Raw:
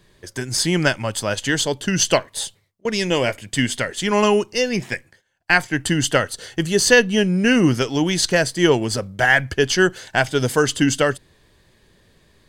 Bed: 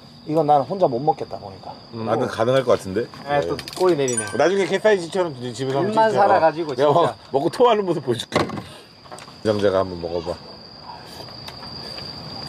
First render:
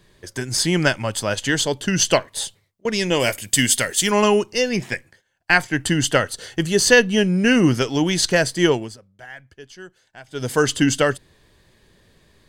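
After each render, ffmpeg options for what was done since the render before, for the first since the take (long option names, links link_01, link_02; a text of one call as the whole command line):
ffmpeg -i in.wav -filter_complex "[0:a]asplit=3[link_01][link_02][link_03];[link_01]afade=type=out:start_time=3.19:duration=0.02[link_04];[link_02]aemphasis=mode=production:type=75fm,afade=type=in:start_time=3.19:duration=0.02,afade=type=out:start_time=4.1:duration=0.02[link_05];[link_03]afade=type=in:start_time=4.1:duration=0.02[link_06];[link_04][link_05][link_06]amix=inputs=3:normalize=0,asplit=3[link_07][link_08][link_09];[link_07]atrim=end=8.97,asetpts=PTS-STARTPTS,afade=type=out:start_time=8.62:duration=0.35:silence=0.0668344[link_10];[link_08]atrim=start=8.97:end=10.27,asetpts=PTS-STARTPTS,volume=-23.5dB[link_11];[link_09]atrim=start=10.27,asetpts=PTS-STARTPTS,afade=type=in:duration=0.35:silence=0.0668344[link_12];[link_10][link_11][link_12]concat=n=3:v=0:a=1" out.wav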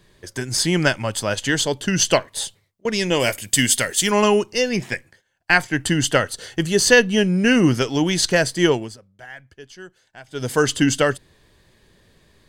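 ffmpeg -i in.wav -af anull out.wav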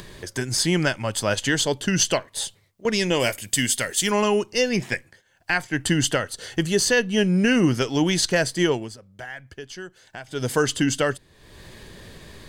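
ffmpeg -i in.wav -af "alimiter=limit=-9.5dB:level=0:latency=1:release=407,acompressor=mode=upward:threshold=-30dB:ratio=2.5" out.wav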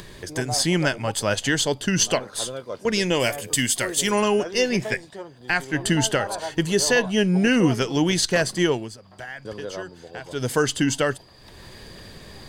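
ffmpeg -i in.wav -i bed.wav -filter_complex "[1:a]volume=-16dB[link_01];[0:a][link_01]amix=inputs=2:normalize=0" out.wav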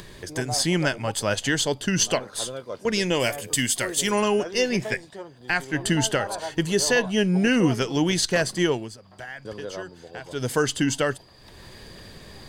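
ffmpeg -i in.wav -af "volume=-1.5dB" out.wav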